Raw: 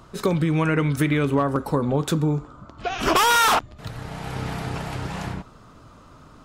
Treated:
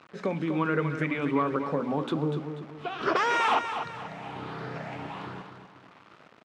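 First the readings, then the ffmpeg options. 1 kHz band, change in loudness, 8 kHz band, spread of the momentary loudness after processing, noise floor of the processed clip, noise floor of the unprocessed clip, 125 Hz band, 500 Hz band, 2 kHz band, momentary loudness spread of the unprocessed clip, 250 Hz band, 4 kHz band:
-5.5 dB, -7.0 dB, -20.0 dB, 14 LU, -55 dBFS, -48 dBFS, -10.5 dB, -5.0 dB, -5.0 dB, 16 LU, -6.5 dB, -11.0 dB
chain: -af "afftfilt=real='re*pow(10,8/40*sin(2*PI*(0.59*log(max(b,1)*sr/1024/100)/log(2)-(1.3)*(pts-256)/sr)))':imag='im*pow(10,8/40*sin(2*PI*(0.59*log(max(b,1)*sr/1024/100)/log(2)-(1.3)*(pts-256)/sr)))':win_size=1024:overlap=0.75,bandreject=f=60:t=h:w=6,bandreject=f=120:t=h:w=6,bandreject=f=180:t=h:w=6,bandreject=f=240:t=h:w=6,bandreject=f=300:t=h:w=6,acrusher=bits=6:mix=0:aa=0.000001,highpass=190,lowpass=2800,aecho=1:1:244|488|732|976:0.376|0.147|0.0572|0.0223,volume=0.501"

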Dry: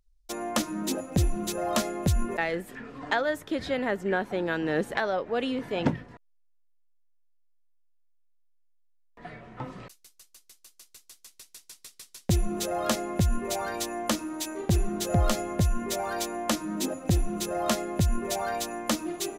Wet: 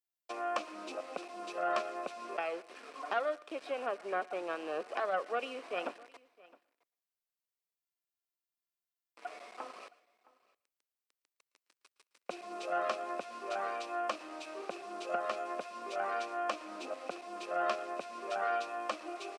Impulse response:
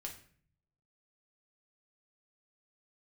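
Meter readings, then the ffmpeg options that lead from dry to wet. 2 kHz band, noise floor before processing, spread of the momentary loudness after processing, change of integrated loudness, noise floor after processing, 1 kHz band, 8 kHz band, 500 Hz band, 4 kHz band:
-7.5 dB, -63 dBFS, 12 LU, -9.0 dB, under -85 dBFS, -3.0 dB, -21.0 dB, -6.5 dB, -12.0 dB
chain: -filter_complex "[0:a]highshelf=f=2500:g=3.5,asplit=2[s0][s1];[s1]acompressor=threshold=0.0251:ratio=10,volume=1.33[s2];[s0][s2]amix=inputs=2:normalize=0,asplit=3[s3][s4][s5];[s3]bandpass=f=730:t=q:w=8,volume=1[s6];[s4]bandpass=f=1090:t=q:w=8,volume=0.501[s7];[s5]bandpass=f=2440:t=q:w=8,volume=0.355[s8];[s6][s7][s8]amix=inputs=3:normalize=0,aeval=exprs='val(0)*gte(abs(val(0)),0.00355)':c=same,aeval=exprs='0.141*(cos(1*acos(clip(val(0)/0.141,-1,1)))-cos(1*PI/2))+0.0141*(cos(2*acos(clip(val(0)/0.141,-1,1)))-cos(2*PI/2))+0.0282*(cos(4*acos(clip(val(0)/0.141,-1,1)))-cos(4*PI/2))':c=same,highpass=f=280:w=0.5412,highpass=f=280:w=1.3066,equalizer=f=730:t=q:w=4:g=-9,equalizer=f=3500:t=q:w=4:g=-4,equalizer=f=6800:t=q:w=4:g=-6,lowpass=f=9000:w=0.5412,lowpass=f=9000:w=1.3066,aecho=1:1:665:0.0708,asplit=2[s9][s10];[1:a]atrim=start_sample=2205,lowshelf=f=470:g=-5,adelay=113[s11];[s10][s11]afir=irnorm=-1:irlink=0,volume=0.158[s12];[s9][s12]amix=inputs=2:normalize=0,volume=1.33" -ar 44100 -c:a nellymoser

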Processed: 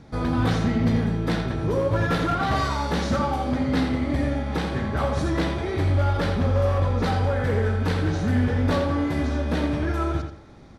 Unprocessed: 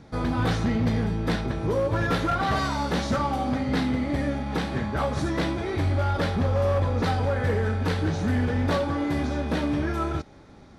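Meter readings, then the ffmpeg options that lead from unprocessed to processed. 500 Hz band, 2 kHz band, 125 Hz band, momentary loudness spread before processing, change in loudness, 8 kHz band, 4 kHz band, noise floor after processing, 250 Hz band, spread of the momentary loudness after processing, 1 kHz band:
+1.5 dB, +1.0 dB, +2.5 dB, 3 LU, +2.0 dB, +0.5 dB, +0.5 dB, -44 dBFS, +2.0 dB, 4 LU, +1.0 dB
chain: -filter_complex "[0:a]lowshelf=f=130:g=3,asplit=2[s0][s1];[s1]adelay=84,lowpass=f=4700:p=1,volume=0.501,asplit=2[s2][s3];[s3]adelay=84,lowpass=f=4700:p=1,volume=0.31,asplit=2[s4][s5];[s5]adelay=84,lowpass=f=4700:p=1,volume=0.31,asplit=2[s6][s7];[s7]adelay=84,lowpass=f=4700:p=1,volume=0.31[s8];[s0][s2][s4][s6][s8]amix=inputs=5:normalize=0"

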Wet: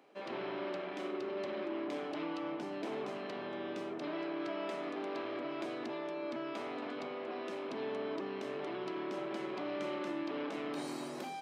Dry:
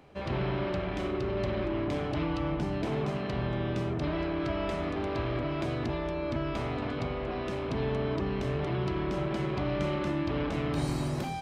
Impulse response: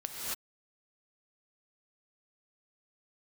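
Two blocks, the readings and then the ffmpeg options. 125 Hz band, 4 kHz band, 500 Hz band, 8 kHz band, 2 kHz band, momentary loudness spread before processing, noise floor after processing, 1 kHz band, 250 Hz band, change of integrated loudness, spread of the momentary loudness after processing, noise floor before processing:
-25.0 dB, -6.0 dB, -6.0 dB, no reading, -6.0 dB, 2 LU, -43 dBFS, -6.0 dB, -8.0 dB, -8.0 dB, 3 LU, -34 dBFS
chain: -af "highpass=f=250:w=0.5412,highpass=f=250:w=1.3066,volume=0.501"

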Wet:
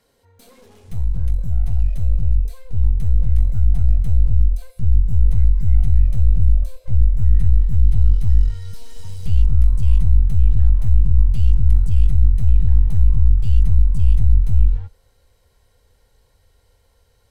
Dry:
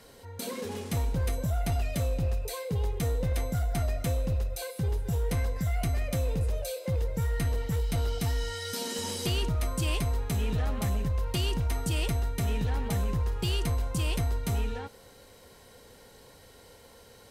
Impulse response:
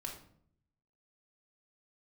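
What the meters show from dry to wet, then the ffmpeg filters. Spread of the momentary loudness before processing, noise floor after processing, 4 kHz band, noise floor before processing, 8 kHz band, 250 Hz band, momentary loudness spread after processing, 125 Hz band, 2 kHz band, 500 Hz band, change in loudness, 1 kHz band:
4 LU, -60 dBFS, under -10 dB, -54 dBFS, under -10 dB, -1.5 dB, 6 LU, +12.0 dB, under -10 dB, -14.0 dB, +12.0 dB, under -10 dB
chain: -af "aeval=exprs='clip(val(0),-1,0.0112)':c=same,asubboost=boost=8:cutoff=74,afwtdn=0.0794,volume=2"

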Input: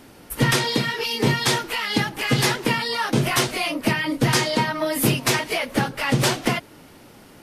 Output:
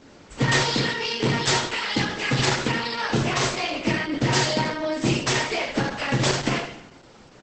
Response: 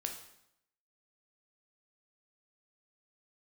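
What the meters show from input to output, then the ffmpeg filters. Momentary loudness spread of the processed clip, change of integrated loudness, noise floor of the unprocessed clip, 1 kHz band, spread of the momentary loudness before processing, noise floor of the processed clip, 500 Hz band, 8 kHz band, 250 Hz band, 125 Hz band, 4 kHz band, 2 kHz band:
5 LU, -1.5 dB, -47 dBFS, -1.5 dB, 4 LU, -49 dBFS, -1.5 dB, -2.5 dB, -2.0 dB, -2.0 dB, -1.5 dB, -1.5 dB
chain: -filter_complex "[0:a]aecho=1:1:32|73:0.168|0.398[s0];[1:a]atrim=start_sample=2205[s1];[s0][s1]afir=irnorm=-1:irlink=0,volume=0.841" -ar 48000 -c:a libopus -b:a 10k

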